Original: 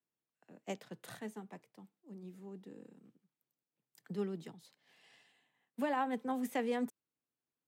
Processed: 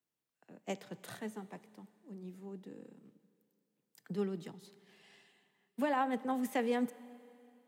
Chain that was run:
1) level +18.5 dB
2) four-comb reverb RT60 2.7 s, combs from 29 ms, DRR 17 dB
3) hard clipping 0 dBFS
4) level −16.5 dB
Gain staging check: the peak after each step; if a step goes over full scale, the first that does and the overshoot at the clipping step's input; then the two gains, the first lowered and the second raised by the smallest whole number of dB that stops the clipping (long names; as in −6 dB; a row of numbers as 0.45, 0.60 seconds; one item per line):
−6.5, −6.0, −6.0, −22.5 dBFS
no step passes full scale